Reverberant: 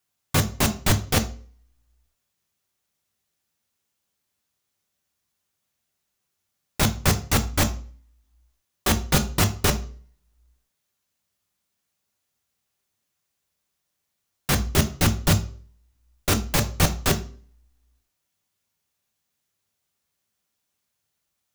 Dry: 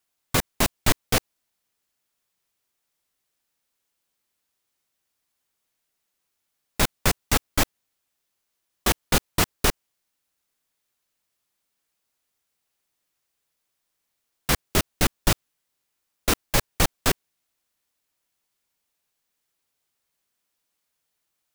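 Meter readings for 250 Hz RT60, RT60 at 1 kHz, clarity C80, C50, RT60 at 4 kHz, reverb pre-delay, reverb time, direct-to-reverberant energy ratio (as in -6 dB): 0.50 s, 0.40 s, 19.0 dB, 14.5 dB, 0.40 s, 3 ms, 0.45 s, 7.0 dB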